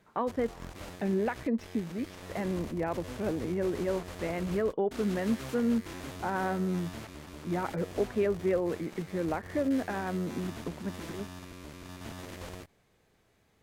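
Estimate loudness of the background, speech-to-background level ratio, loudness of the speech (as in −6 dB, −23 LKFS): −44.0 LKFS, 11.0 dB, −33.0 LKFS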